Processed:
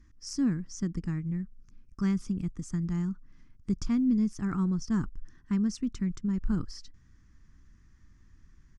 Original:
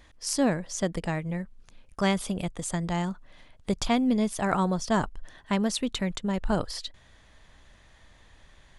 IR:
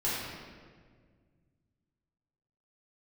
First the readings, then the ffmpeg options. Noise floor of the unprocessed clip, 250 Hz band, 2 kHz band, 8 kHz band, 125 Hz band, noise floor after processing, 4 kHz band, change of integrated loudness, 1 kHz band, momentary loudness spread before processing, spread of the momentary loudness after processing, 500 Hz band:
−57 dBFS, −0.5 dB, −13.5 dB, −10.5 dB, 0.0 dB, −59 dBFS, −13.0 dB, −2.5 dB, −16.5 dB, 11 LU, 10 LU, −15.0 dB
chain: -af "firequalizer=gain_entry='entry(220,0);entry(320,-3);entry(590,-30);entry(1200,-10);entry(3700,-24);entry(5400,-5);entry(10000,-23)':delay=0.05:min_phase=1"

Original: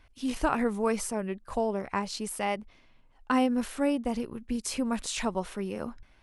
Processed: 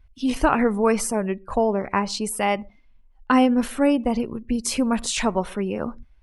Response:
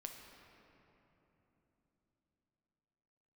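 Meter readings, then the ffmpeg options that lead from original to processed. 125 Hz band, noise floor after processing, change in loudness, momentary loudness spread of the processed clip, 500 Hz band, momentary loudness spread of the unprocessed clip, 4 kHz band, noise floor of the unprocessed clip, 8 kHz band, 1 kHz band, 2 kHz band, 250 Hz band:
+8.0 dB, −54 dBFS, +8.0 dB, 8 LU, +8.0 dB, 8 LU, +7.5 dB, −60 dBFS, +7.5 dB, +8.0 dB, +8.0 dB, +8.0 dB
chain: -filter_complex "[0:a]acontrast=70,asplit=2[link_01][link_02];[1:a]atrim=start_sample=2205,atrim=end_sample=6174[link_03];[link_02][link_03]afir=irnorm=-1:irlink=0,volume=-9dB[link_04];[link_01][link_04]amix=inputs=2:normalize=0,afftdn=noise_reduction=18:noise_floor=-42"

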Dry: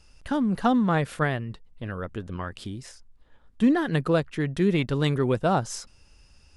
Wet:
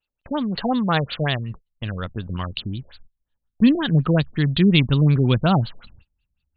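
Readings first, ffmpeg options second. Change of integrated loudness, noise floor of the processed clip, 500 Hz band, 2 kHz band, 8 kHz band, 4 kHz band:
+5.0 dB, −81 dBFS, 0.0 dB, +3.5 dB, below −40 dB, +11.0 dB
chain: -af "aemphasis=mode=production:type=bsi,aexciter=amount=4:drive=5.6:freq=2800,asubboost=boost=10:cutoff=150,agate=range=-28dB:threshold=-37dB:ratio=16:detection=peak,afftfilt=real='re*lt(b*sr/1024,650*pow(4700/650,0.5+0.5*sin(2*PI*5.5*pts/sr)))':imag='im*lt(b*sr/1024,650*pow(4700/650,0.5+0.5*sin(2*PI*5.5*pts/sr)))':win_size=1024:overlap=0.75,volume=5dB"

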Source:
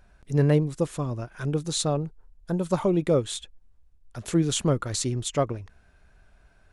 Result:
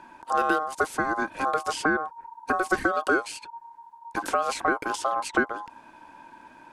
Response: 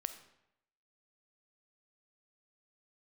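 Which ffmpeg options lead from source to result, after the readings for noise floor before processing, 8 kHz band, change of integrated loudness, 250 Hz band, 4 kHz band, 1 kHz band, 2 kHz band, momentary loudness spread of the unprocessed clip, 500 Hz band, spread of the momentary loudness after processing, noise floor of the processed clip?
−59 dBFS, −6.5 dB, −0.5 dB, −5.0 dB, −5.0 dB, +11.5 dB, +16.5 dB, 12 LU, −2.5 dB, 14 LU, −52 dBFS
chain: -filter_complex "[0:a]equalizer=frequency=630:width_type=o:width=0.5:gain=13.5,acrossover=split=840|2400[link_01][link_02][link_03];[link_01]acompressor=threshold=-30dB:ratio=4[link_04];[link_02]acompressor=threshold=-47dB:ratio=4[link_05];[link_03]acompressor=threshold=-45dB:ratio=4[link_06];[link_04][link_05][link_06]amix=inputs=3:normalize=0,aeval=exprs='val(0)*sin(2*PI*930*n/s)':channel_layout=same,volume=9dB"

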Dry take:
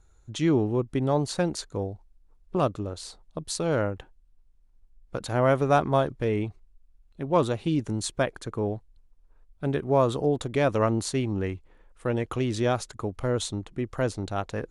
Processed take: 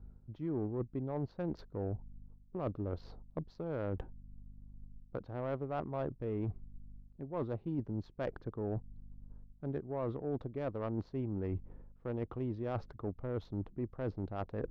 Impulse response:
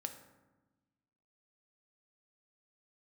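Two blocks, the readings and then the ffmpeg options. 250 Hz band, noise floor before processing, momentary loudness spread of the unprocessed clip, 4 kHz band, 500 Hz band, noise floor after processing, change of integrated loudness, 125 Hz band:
−11.0 dB, −60 dBFS, 13 LU, below −25 dB, −13.0 dB, −61 dBFS, −12.5 dB, −10.0 dB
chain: -af "aeval=exprs='val(0)+0.00141*(sin(2*PI*50*n/s)+sin(2*PI*2*50*n/s)/2+sin(2*PI*3*50*n/s)/3+sin(2*PI*4*50*n/s)/4+sin(2*PI*5*50*n/s)/5)':channel_layout=same,areverse,acompressor=threshold=-39dB:ratio=6,areverse,highshelf=frequency=7000:width_type=q:width=3:gain=-12,adynamicsmooth=sensitivity=1.5:basefreq=710,volume=4.5dB"

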